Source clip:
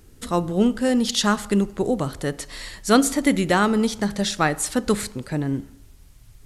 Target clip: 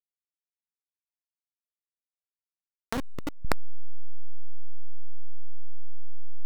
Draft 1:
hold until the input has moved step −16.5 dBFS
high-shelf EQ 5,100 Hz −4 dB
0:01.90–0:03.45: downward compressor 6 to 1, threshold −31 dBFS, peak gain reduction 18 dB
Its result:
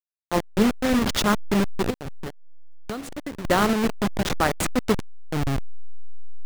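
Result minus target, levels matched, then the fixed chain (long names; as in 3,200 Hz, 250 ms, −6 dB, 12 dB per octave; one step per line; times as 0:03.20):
hold until the input has moved: distortion −26 dB
hold until the input has moved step −5.5 dBFS
high-shelf EQ 5,100 Hz −4 dB
0:01.90–0:03.45: downward compressor 6 to 1, threshold −31 dBFS, peak gain reduction 18 dB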